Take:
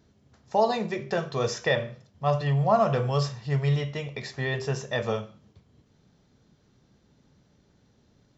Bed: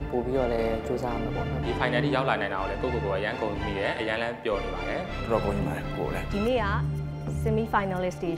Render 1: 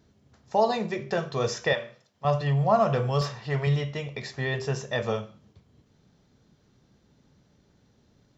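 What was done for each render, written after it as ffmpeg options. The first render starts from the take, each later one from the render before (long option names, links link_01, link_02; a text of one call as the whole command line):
ffmpeg -i in.wav -filter_complex "[0:a]asettb=1/sr,asplit=3[link_01][link_02][link_03];[link_01]atrim=end=1.734[link_04];[link_02]atrim=start=1.73:end=2.25,asetpts=PTS-STARTPTS,afade=type=in:duration=0.004:curve=qsin,afade=type=out:start_time=0.516:duration=0.004:curve=qsin,highpass=frequency=700:poles=1[link_05];[link_03]atrim=start=2.246[link_06];[link_04][link_05]acrossfade=duration=0.004:curve1=hsin:curve2=qsin[link_07];[link_07][link_06]acrossfade=duration=0.004:curve1=qsin:curve2=hsin,asettb=1/sr,asplit=3[link_08][link_09][link_10];[link_08]atrim=end=3.214[link_11];[link_09]atrim=start=3.21:end=3.67,asetpts=PTS-STARTPTS,afade=type=in:duration=0.004:curve=qsin,afade=type=out:start_time=0.456:duration=0.004:curve=qsin,asplit=2[link_12][link_13];[link_13]highpass=frequency=720:poles=1,volume=14dB,asoftclip=type=tanh:threshold=-15.5dB[link_14];[link_12][link_14]amix=inputs=2:normalize=0,lowpass=frequency=2100:poles=1,volume=-6dB[link_15];[link_10]atrim=start=3.666[link_16];[link_11][link_15]acrossfade=duration=0.004:curve1=hsin:curve2=qsin[link_17];[link_17][link_16]acrossfade=duration=0.004:curve1=qsin:curve2=hsin" out.wav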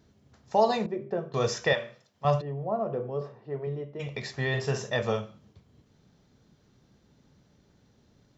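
ffmpeg -i in.wav -filter_complex "[0:a]asettb=1/sr,asplit=3[link_01][link_02][link_03];[link_01]atrim=end=0.864[link_04];[link_02]atrim=start=0.86:end=1.34,asetpts=PTS-STARTPTS,afade=type=in:duration=0.004:curve=qsin,afade=type=out:start_time=0.476:duration=0.004:curve=qsin,bandpass=frequency=330:width_type=q:width=1[link_05];[link_03]atrim=start=1.336[link_06];[link_04][link_05]acrossfade=duration=0.004:curve1=hsin:curve2=qsin[link_07];[link_07][link_06]acrossfade=duration=0.004:curve1=qsin:curve2=hsin,asplit=3[link_08][link_09][link_10];[link_08]afade=type=out:start_time=2.4:duration=0.02[link_11];[link_09]bandpass=frequency=360:width_type=q:width=1.8,afade=type=in:start_time=2.4:duration=0.02,afade=type=out:start_time=3.99:duration=0.02[link_12];[link_10]afade=type=in:start_time=3.99:duration=0.02[link_13];[link_11][link_12][link_13]amix=inputs=3:normalize=0,asettb=1/sr,asplit=3[link_14][link_15][link_16];[link_14]atrim=end=4.504[link_17];[link_15]atrim=start=4.5:end=4.9,asetpts=PTS-STARTPTS,afade=type=in:duration=0.004:curve=qsin,afade=type=out:start_time=0.396:duration=0.004:curve=qsin,asplit=2[link_18][link_19];[link_19]adelay=47,volume=-7dB[link_20];[link_18][link_20]amix=inputs=2:normalize=0,atrim=end_sample=17640[link_21];[link_16]atrim=start=4.896[link_22];[link_17][link_21]acrossfade=duration=0.004:curve1=hsin:curve2=qsin[link_23];[link_23][link_22]acrossfade=duration=0.004:curve1=qsin:curve2=hsin" out.wav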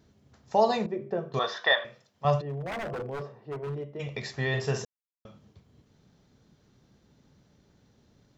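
ffmpeg -i in.wav -filter_complex "[0:a]asettb=1/sr,asplit=3[link_01][link_02][link_03];[link_01]atrim=end=1.394[link_04];[link_02]atrim=start=1.39:end=1.85,asetpts=PTS-STARTPTS,afade=type=in:duration=0.004:curve=qsin,afade=type=out:start_time=0.456:duration=0.004:curve=qsin,highpass=480,equalizer=frequency=480:width_type=q:width=4:gain=-6,equalizer=frequency=700:width_type=q:width=4:gain=6,equalizer=frequency=1100:width_type=q:width=4:gain=7,equalizer=frequency=1700:width_type=q:width=4:gain=8,equalizer=frequency=2500:width_type=q:width=4:gain=-9,equalizer=frequency=3600:width_type=q:width=4:gain=10,lowpass=frequency=4100:width=0.5412,lowpass=frequency=4100:width=1.3066[link_05];[link_03]atrim=start=1.846[link_06];[link_04][link_05]acrossfade=duration=0.004:curve1=hsin:curve2=qsin[link_07];[link_07][link_06]acrossfade=duration=0.004:curve1=qsin:curve2=hsin,asettb=1/sr,asplit=3[link_08][link_09][link_10];[link_08]atrim=end=2.464[link_11];[link_09]atrim=start=2.46:end=3.99,asetpts=PTS-STARTPTS,afade=type=in:duration=0.004:curve=qsin,afade=type=out:start_time=1.526:duration=0.004:curve=qsin,aeval=exprs='0.0355*(abs(mod(val(0)/0.0355+3,4)-2)-1)':channel_layout=same[link_12];[link_10]atrim=start=3.986[link_13];[link_11][link_12]acrossfade=duration=0.004:curve1=hsin:curve2=qsin[link_14];[link_14][link_13]acrossfade=duration=0.004:curve1=qsin:curve2=hsin,asplit=3[link_15][link_16][link_17];[link_15]atrim=end=4.85,asetpts=PTS-STARTPTS,afade=type=out:start_time=4.846:duration=0.004:curve=hsin[link_18];[link_16]atrim=start=4.85:end=5.25,asetpts=PTS-STARTPTS,volume=0[link_19];[link_17]atrim=start=5.25,asetpts=PTS-STARTPTS,afade=type=in:duration=0.004:curve=hsin[link_20];[link_18][link_19][link_20]concat=n=3:v=0:a=1" out.wav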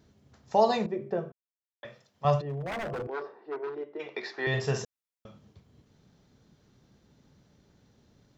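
ffmpeg -i in.wav -filter_complex "[0:a]asettb=1/sr,asplit=3[link_01][link_02][link_03];[link_01]atrim=end=3.074[link_04];[link_02]atrim=start=3.07:end=4.47,asetpts=PTS-STARTPTS,afade=type=in:duration=0.004:curve=qsin,afade=type=out:start_time=1.396:duration=0.004:curve=qsin,highpass=frequency=300:width=0.5412,highpass=frequency=300:width=1.3066,equalizer=frequency=350:width_type=q:width=4:gain=7,equalizer=frequency=560:width_type=q:width=4:gain=-5,equalizer=frequency=880:width_type=q:width=4:gain=4,equalizer=frequency=1500:width_type=q:width=4:gain=6,equalizer=frequency=3000:width_type=q:width=4:gain=-5,lowpass=frequency=4800:width=0.5412,lowpass=frequency=4800:width=1.3066[link_05];[link_03]atrim=start=4.466[link_06];[link_04][link_05]acrossfade=duration=0.004:curve1=hsin:curve2=qsin[link_07];[link_07][link_06]acrossfade=duration=0.004:curve1=qsin:curve2=hsin,asplit=3[link_08][link_09][link_10];[link_08]atrim=end=1.32,asetpts=PTS-STARTPTS,afade=type=out:start_time=1.316:duration=0.004:curve=hsin[link_11];[link_09]atrim=start=1.32:end=1.83,asetpts=PTS-STARTPTS,volume=0[link_12];[link_10]atrim=start=1.83,asetpts=PTS-STARTPTS,afade=type=in:duration=0.004:curve=hsin[link_13];[link_11][link_12][link_13]concat=n=3:v=0:a=1" out.wav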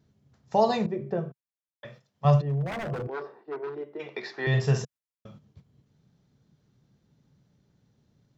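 ffmpeg -i in.wav -af "agate=range=-8dB:threshold=-53dB:ratio=16:detection=peak,equalizer=frequency=140:width_type=o:width=1:gain=8.5" out.wav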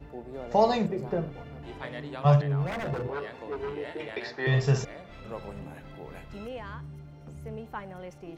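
ffmpeg -i in.wav -i bed.wav -filter_complex "[1:a]volume=-13.5dB[link_01];[0:a][link_01]amix=inputs=2:normalize=0" out.wav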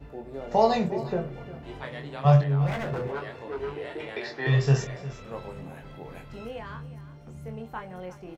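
ffmpeg -i in.wav -filter_complex "[0:a]asplit=2[link_01][link_02];[link_02]adelay=22,volume=-5.5dB[link_03];[link_01][link_03]amix=inputs=2:normalize=0,aecho=1:1:355:0.158" out.wav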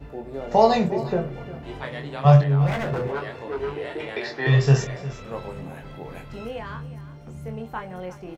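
ffmpeg -i in.wav -af "volume=4.5dB" out.wav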